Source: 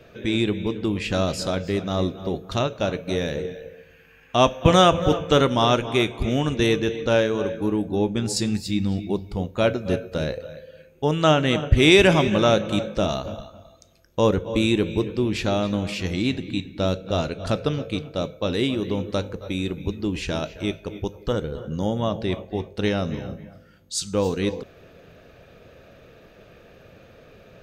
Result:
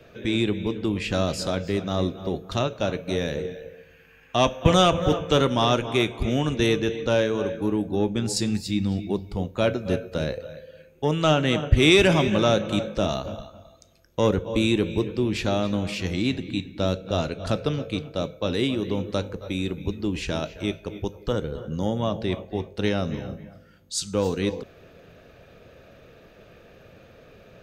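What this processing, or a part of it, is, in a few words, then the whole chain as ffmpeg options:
one-band saturation: -filter_complex "[0:a]acrossover=split=260|2300[s0][s1][s2];[s1]asoftclip=type=tanh:threshold=0.251[s3];[s0][s3][s2]amix=inputs=3:normalize=0,volume=0.891"

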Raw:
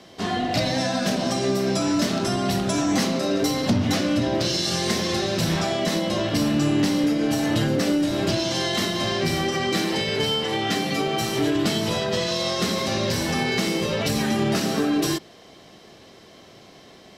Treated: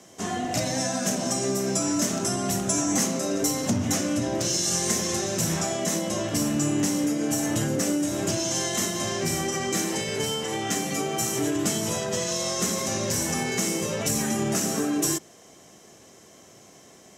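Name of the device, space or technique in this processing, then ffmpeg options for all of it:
budget condenser microphone: -af "highpass=63,highshelf=f=5400:t=q:w=3:g=8,volume=0.631"

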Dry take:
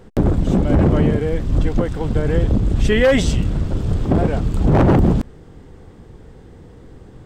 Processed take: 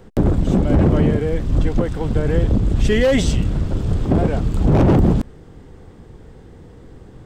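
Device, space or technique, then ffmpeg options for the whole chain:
one-band saturation: -filter_complex "[0:a]acrossover=split=580|3700[s0][s1][s2];[s1]asoftclip=type=tanh:threshold=0.0841[s3];[s0][s3][s2]amix=inputs=3:normalize=0"

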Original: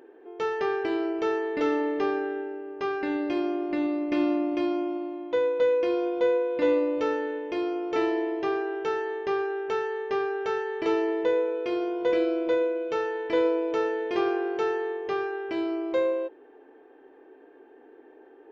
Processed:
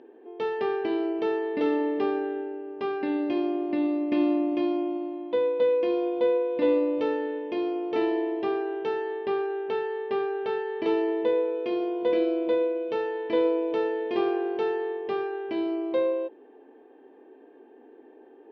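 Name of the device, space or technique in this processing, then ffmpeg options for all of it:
guitar cabinet: -filter_complex "[0:a]highpass=79,equalizer=f=89:t=q:w=4:g=-6,equalizer=f=230:t=q:w=4:g=8,equalizer=f=1400:t=q:w=4:g=-9,equalizer=f=2100:t=q:w=4:g=-4,lowpass=f=4300:w=0.5412,lowpass=f=4300:w=1.3066,asettb=1/sr,asplit=3[s0][s1][s2];[s0]atrim=end=9.124[s3];[s1]atrim=start=9.12:end=10.77,asetpts=PTS-STARTPTS,afade=t=in:d=0.004:c=qsin,afade=t=out:st=1.646:d=0.004:c=qsin,lowpass=f=5300:w=0.5412,lowpass=f=5300:w=1.3066[s4];[s2]atrim=start=10.766[s5];[s3][s4]acrossfade=d=0.004:c1=hsin:c2=qsin[s6];[s6][s5]acrossfade=d=0.004:c1=qsin:c2=hsin"

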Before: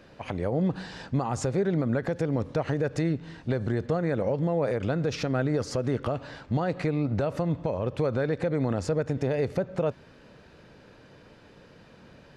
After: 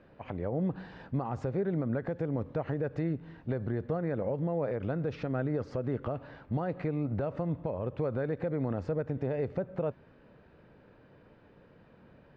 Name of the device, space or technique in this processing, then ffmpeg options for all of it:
phone in a pocket: -af "lowpass=3100,highshelf=f=2400:g=-8.5,volume=0.562"

